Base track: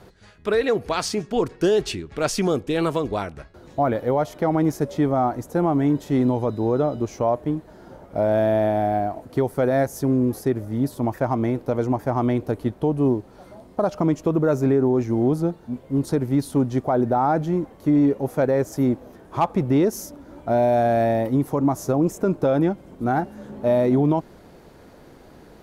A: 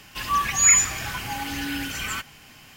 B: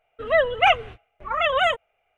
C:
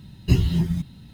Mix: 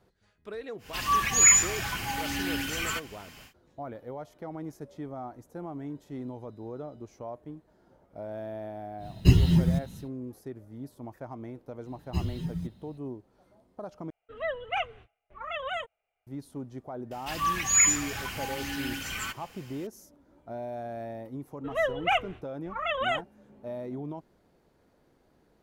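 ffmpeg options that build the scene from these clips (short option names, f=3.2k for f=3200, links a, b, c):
-filter_complex "[1:a]asplit=2[a][b];[3:a]asplit=2[c][d];[2:a]asplit=2[e][f];[0:a]volume=-18.5dB[g];[d]asplit=2[h][i];[i]adelay=5.1,afreqshift=1.8[j];[h][j]amix=inputs=2:normalize=1[k];[g]asplit=2[l][m];[l]atrim=end=14.104[n];[e]atrim=end=2.17,asetpts=PTS-STARTPTS,volume=-13.5dB[o];[m]atrim=start=16.266[p];[a]atrim=end=2.76,asetpts=PTS-STARTPTS,volume=-2dB,afade=t=in:d=0.1,afade=t=out:st=2.66:d=0.1,adelay=780[q];[c]atrim=end=1.13,asetpts=PTS-STARTPTS,afade=t=in:d=0.1,afade=t=out:st=1.03:d=0.1,adelay=8970[r];[k]atrim=end=1.13,asetpts=PTS-STARTPTS,volume=-8.5dB,afade=t=in:d=0.004:c=hsin,afade=t=out:st=1.126:d=0.004:c=hsin,adelay=11850[s];[b]atrim=end=2.76,asetpts=PTS-STARTPTS,volume=-5dB,afade=t=in:d=0.004:c=hsin,afade=t=out:st=2.756:d=0.004:c=hsin,adelay=17110[t];[f]atrim=end=2.17,asetpts=PTS-STARTPTS,volume=-8.5dB,afade=t=in:d=0.004:c=hsin,afade=t=out:st=2.166:d=0.004:c=hsin,adelay=21450[u];[n][o]acrossfade=d=0.004:c1=hsin:c2=hsin[v];[v][p]acrossfade=d=0.004:c1=hsin:c2=hsin[w];[w][q][r][s][t][u]amix=inputs=6:normalize=0"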